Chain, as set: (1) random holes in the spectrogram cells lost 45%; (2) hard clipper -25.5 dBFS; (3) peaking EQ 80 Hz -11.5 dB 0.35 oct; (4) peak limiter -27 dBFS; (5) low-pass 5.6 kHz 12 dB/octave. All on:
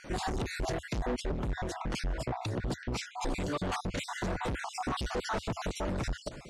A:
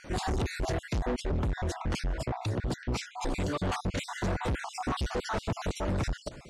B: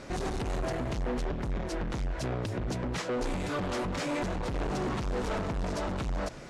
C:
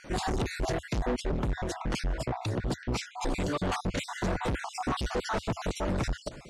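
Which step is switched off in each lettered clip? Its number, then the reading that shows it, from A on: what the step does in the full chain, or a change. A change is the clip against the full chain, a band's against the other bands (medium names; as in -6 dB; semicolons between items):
3, 125 Hz band +3.5 dB; 1, 500 Hz band +3.5 dB; 4, mean gain reduction 2.0 dB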